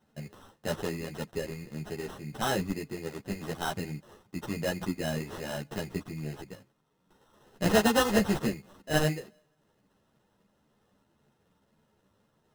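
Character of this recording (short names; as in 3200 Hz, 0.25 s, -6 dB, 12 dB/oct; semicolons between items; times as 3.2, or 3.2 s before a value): aliases and images of a low sample rate 2300 Hz, jitter 0%; a shimmering, thickened sound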